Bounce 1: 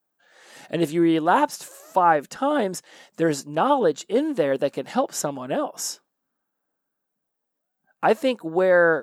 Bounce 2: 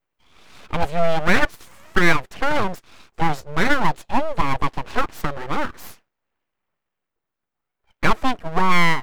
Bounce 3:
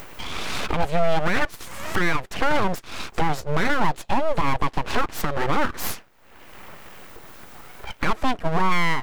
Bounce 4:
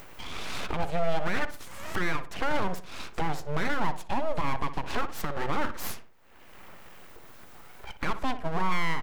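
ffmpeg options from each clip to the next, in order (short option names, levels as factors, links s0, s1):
-af "bass=f=250:g=-1,treble=f=4000:g=-15,aeval=exprs='abs(val(0))':c=same,volume=1.78"
-af "acompressor=mode=upward:threshold=0.2:ratio=2.5,alimiter=limit=0.237:level=0:latency=1:release=110,volume=1.41"
-filter_complex "[0:a]asplit=2[s0][s1];[s1]adelay=60,lowpass=f=2000:p=1,volume=0.282,asplit=2[s2][s3];[s3]adelay=60,lowpass=f=2000:p=1,volume=0.42,asplit=2[s4][s5];[s5]adelay=60,lowpass=f=2000:p=1,volume=0.42,asplit=2[s6][s7];[s7]adelay=60,lowpass=f=2000:p=1,volume=0.42[s8];[s0][s2][s4][s6][s8]amix=inputs=5:normalize=0,volume=0.422"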